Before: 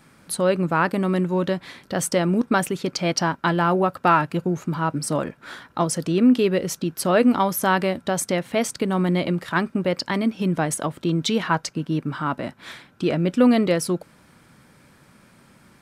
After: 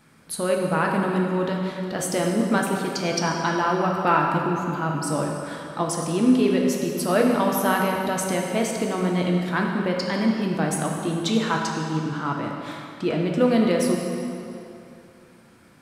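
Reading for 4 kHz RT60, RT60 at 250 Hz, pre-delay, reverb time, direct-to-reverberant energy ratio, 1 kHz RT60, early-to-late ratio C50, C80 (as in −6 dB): 2.1 s, 2.6 s, 4 ms, 2.8 s, 0.0 dB, 2.9 s, 1.5 dB, 3.0 dB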